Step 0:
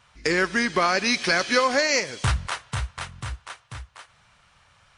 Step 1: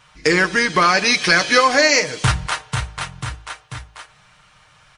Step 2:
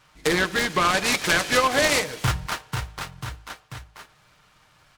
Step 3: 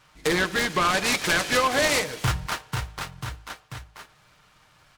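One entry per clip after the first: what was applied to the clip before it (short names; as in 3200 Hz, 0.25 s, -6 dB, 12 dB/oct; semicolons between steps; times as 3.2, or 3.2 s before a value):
comb 6.5 ms, depth 53%; de-hum 54.59 Hz, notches 17; gain +6 dB
noise-modulated delay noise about 1600 Hz, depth 0.049 ms; gain -6 dB
soft clip -13.5 dBFS, distortion -18 dB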